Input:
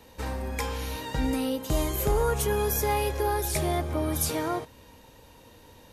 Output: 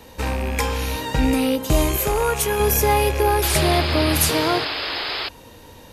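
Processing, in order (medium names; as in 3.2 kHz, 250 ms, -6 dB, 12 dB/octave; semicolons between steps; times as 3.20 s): rattle on loud lows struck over -32 dBFS, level -30 dBFS; 1.97–2.60 s: bass shelf 410 Hz -9 dB; 3.42–5.29 s: painted sound noise 270–5200 Hz -35 dBFS; trim +8.5 dB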